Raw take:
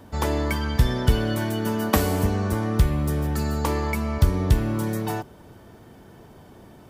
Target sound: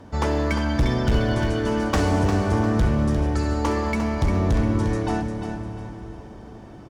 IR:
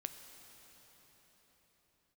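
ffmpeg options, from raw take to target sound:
-filter_complex "[0:a]aresample=22050,aresample=44100,acrusher=bits=11:mix=0:aa=0.000001,aemphasis=mode=reproduction:type=50fm,asoftclip=type=hard:threshold=-17.5dB,aecho=1:1:351|702|1053:0.398|0.115|0.0335,asplit=2[link_01][link_02];[1:a]atrim=start_sample=2205[link_03];[link_02][link_03]afir=irnorm=-1:irlink=0,volume=8.5dB[link_04];[link_01][link_04]amix=inputs=2:normalize=0,aexciter=amount=1.7:drive=4.2:freq=5100,volume=-7dB"

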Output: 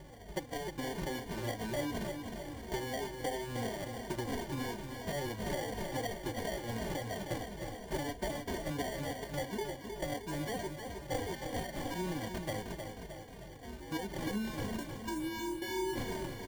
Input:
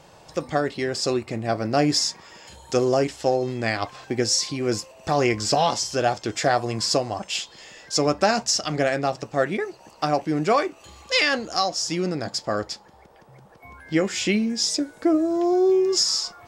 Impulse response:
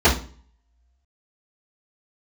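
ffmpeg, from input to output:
-filter_complex "[0:a]acompressor=threshold=-32dB:ratio=10,asettb=1/sr,asplit=3[link_01][link_02][link_03];[link_01]atrim=end=14.954[link_04];[link_02]atrim=start=14.95:end=15.62,asetpts=PTS-STARTPTS,afade=type=in:duration=0.004:curve=qsin,afade=type=out:start_time=0.666:duration=0.004:curve=qsin,asuperpass=centerf=310:order=20:qfactor=4[link_05];[link_03]atrim=start=15.616[link_06];[link_04][link_05]acrossfade=duration=0.004:curve1=hsin:curve2=qsin[link_07];[link_07][link_06]acrossfade=duration=0.004:curve1=qsin:curve2=hsin,acrusher=samples=34:mix=1:aa=0.000001,asplit=2[link_08][link_09];[link_09]aecho=0:1:311|622|933|1244|1555|1866|2177:0.473|0.265|0.148|0.0831|0.0465|0.0261|0.0146[link_10];[link_08][link_10]amix=inputs=2:normalize=0,aeval=exprs='val(0)+0.00282*(sin(2*PI*50*n/s)+sin(2*PI*2*50*n/s)/2+sin(2*PI*3*50*n/s)/3+sin(2*PI*4*50*n/s)/4+sin(2*PI*5*50*n/s)/5)':channel_layout=same,asplit=2[link_11][link_12];[link_12]adelay=2.9,afreqshift=-2.9[link_13];[link_11][link_13]amix=inputs=2:normalize=1"

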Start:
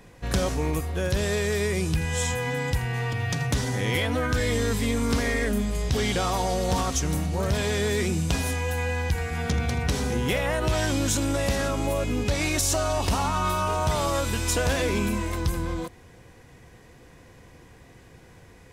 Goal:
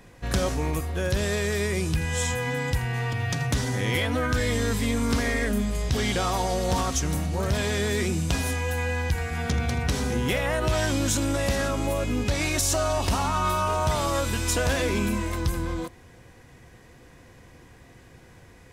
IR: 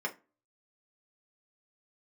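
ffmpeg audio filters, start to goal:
-filter_complex "[0:a]asplit=2[link_01][link_02];[1:a]atrim=start_sample=2205,lowpass=frequency=1700:width=0.5412,lowpass=frequency=1700:width=1.3066[link_03];[link_02][link_03]afir=irnorm=-1:irlink=0,volume=-19dB[link_04];[link_01][link_04]amix=inputs=2:normalize=0"

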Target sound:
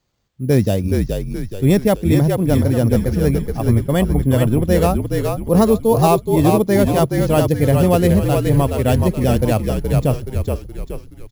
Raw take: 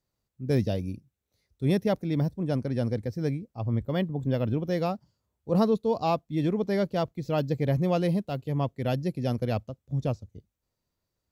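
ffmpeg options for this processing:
ffmpeg -i in.wav -filter_complex "[0:a]asplit=2[link_01][link_02];[link_02]alimiter=limit=-19dB:level=0:latency=1:release=411,volume=-2.5dB[link_03];[link_01][link_03]amix=inputs=2:normalize=0,acrusher=samples=4:mix=1:aa=0.000001,asplit=7[link_04][link_05][link_06][link_07][link_08][link_09][link_10];[link_05]adelay=423,afreqshift=-51,volume=-4dB[link_11];[link_06]adelay=846,afreqshift=-102,volume=-10.6dB[link_12];[link_07]adelay=1269,afreqshift=-153,volume=-17.1dB[link_13];[link_08]adelay=1692,afreqshift=-204,volume=-23.7dB[link_14];[link_09]adelay=2115,afreqshift=-255,volume=-30.2dB[link_15];[link_10]adelay=2538,afreqshift=-306,volume=-36.8dB[link_16];[link_04][link_11][link_12][link_13][link_14][link_15][link_16]amix=inputs=7:normalize=0,volume=7dB" out.wav

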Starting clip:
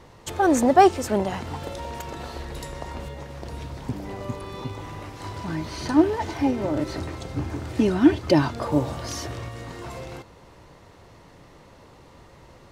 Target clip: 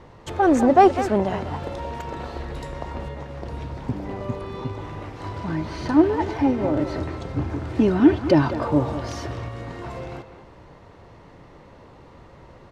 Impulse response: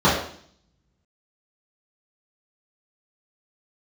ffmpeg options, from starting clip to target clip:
-filter_complex "[0:a]asplit=2[link_01][link_02];[link_02]asoftclip=type=hard:threshold=-17.5dB,volume=-8dB[link_03];[link_01][link_03]amix=inputs=2:normalize=0,aemphasis=mode=reproduction:type=75kf,asplit=2[link_04][link_05];[link_05]adelay=200,highpass=300,lowpass=3400,asoftclip=type=hard:threshold=-11.5dB,volume=-10dB[link_06];[link_04][link_06]amix=inputs=2:normalize=0"

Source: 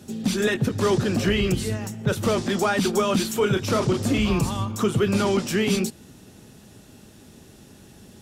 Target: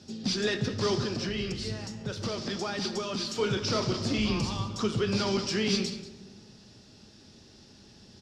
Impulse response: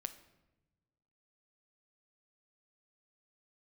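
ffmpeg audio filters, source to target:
-filter_complex "[0:a]asettb=1/sr,asplit=3[link_01][link_02][link_03];[link_01]atrim=end=1.054[link_04];[link_02]atrim=start=1.05:end=3.36,asetpts=PTS-STARTPTS,afade=type=in:duration=0.004:curve=qsin,afade=type=out:start_time=2.306:duration=0.004:curve=qsin,acompressor=threshold=-23dB:ratio=6[link_05];[link_03]atrim=start=3.356[link_06];[link_04][link_05]acrossfade=duration=0.004:curve1=hsin:curve2=qsin[link_07];[link_07][link_06]acrossfade=duration=0.004:curve1=qsin:curve2=hsin,lowpass=frequency=5000:width_type=q:width=4.6,aecho=1:1:187:0.188[link_08];[1:a]atrim=start_sample=2205,asetrate=31752,aresample=44100[link_09];[link_08][link_09]afir=irnorm=-1:irlink=0,volume=-6.5dB"

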